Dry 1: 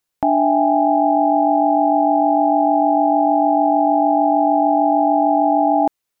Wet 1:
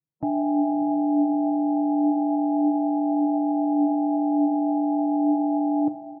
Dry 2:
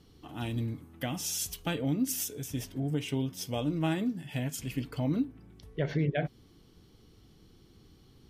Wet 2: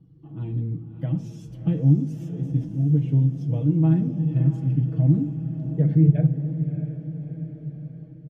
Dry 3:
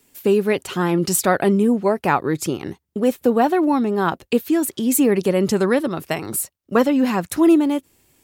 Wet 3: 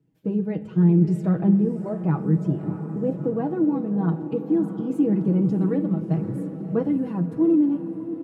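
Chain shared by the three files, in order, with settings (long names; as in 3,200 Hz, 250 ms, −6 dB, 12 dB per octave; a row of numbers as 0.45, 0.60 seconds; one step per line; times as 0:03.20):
spectral magnitudes quantised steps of 15 dB
comb filter 6.2 ms, depth 68%
on a send: feedback delay with all-pass diffusion 640 ms, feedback 58%, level −10.5 dB
on the sum: automatic gain control gain up to 3.5 dB
resonant band-pass 130 Hz, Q 1.3
rectangular room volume 1,800 cubic metres, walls mixed, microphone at 0.38 metres
flanger 0.31 Hz, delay 6.9 ms, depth 9.2 ms, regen +77%
loudness normalisation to −23 LKFS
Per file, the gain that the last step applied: +5.5, +12.0, +5.5 decibels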